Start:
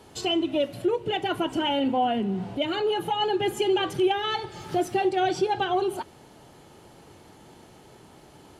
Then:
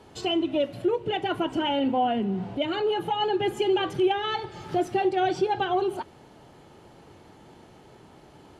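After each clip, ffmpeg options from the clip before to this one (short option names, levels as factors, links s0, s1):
-af "lowpass=f=3700:p=1"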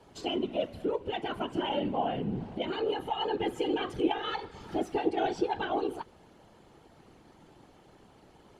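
-af "afftfilt=real='hypot(re,im)*cos(2*PI*random(0))':imag='hypot(re,im)*sin(2*PI*random(1))':win_size=512:overlap=0.75"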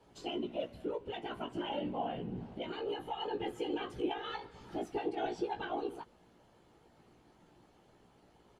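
-filter_complex "[0:a]asplit=2[s0][s1];[s1]adelay=17,volume=0.562[s2];[s0][s2]amix=inputs=2:normalize=0,volume=0.398"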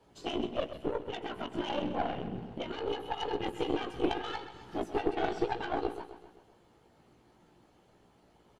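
-af "aeval=exprs='0.0794*(cos(1*acos(clip(val(0)/0.0794,-1,1)))-cos(1*PI/2))+0.0158*(cos(4*acos(clip(val(0)/0.0794,-1,1)))-cos(4*PI/2))+0.00316*(cos(6*acos(clip(val(0)/0.0794,-1,1)))-cos(6*PI/2))+0.00447*(cos(7*acos(clip(val(0)/0.0794,-1,1)))-cos(7*PI/2))':c=same,aecho=1:1:130|260|390|520|650|780:0.251|0.133|0.0706|0.0374|0.0198|0.0105,volume=1.68"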